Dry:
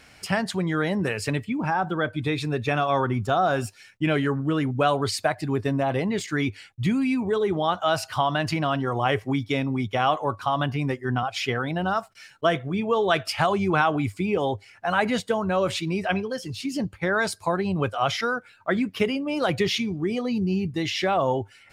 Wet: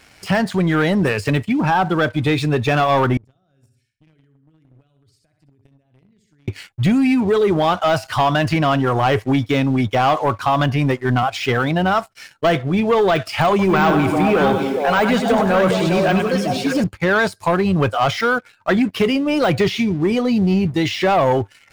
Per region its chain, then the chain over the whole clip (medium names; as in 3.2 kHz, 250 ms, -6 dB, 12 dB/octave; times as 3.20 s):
3.17–6.48 s: feedback delay 63 ms, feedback 37%, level -9 dB + compression 3:1, threshold -39 dBFS + amplifier tone stack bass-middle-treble 10-0-1
13.49–16.84 s: high-pass 130 Hz + repeats whose band climbs or falls 203 ms, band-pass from 230 Hz, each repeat 1.4 oct, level -1 dB + bit-crushed delay 98 ms, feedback 55%, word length 8-bit, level -10 dB
whole clip: de-esser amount 90%; waveshaping leveller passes 2; trim +2 dB